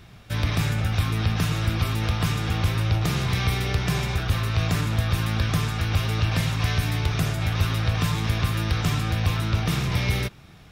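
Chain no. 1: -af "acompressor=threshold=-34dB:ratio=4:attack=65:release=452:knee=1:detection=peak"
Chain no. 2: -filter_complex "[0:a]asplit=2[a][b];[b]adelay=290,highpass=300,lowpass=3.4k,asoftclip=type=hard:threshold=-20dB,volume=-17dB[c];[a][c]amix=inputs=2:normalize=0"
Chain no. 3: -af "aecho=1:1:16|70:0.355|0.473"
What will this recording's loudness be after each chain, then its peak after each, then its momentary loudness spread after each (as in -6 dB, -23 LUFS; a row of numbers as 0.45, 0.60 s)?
-34.5, -24.5, -23.5 LUFS; -19.5, -11.0, -8.5 dBFS; 1, 1, 2 LU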